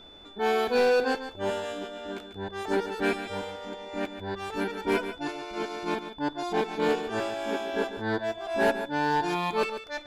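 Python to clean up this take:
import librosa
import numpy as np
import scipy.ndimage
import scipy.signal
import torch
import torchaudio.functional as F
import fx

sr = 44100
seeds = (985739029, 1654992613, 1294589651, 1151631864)

y = fx.fix_declip(x, sr, threshold_db=-17.5)
y = fx.notch(y, sr, hz=3500.0, q=30.0)
y = fx.fix_echo_inverse(y, sr, delay_ms=143, level_db=-10.5)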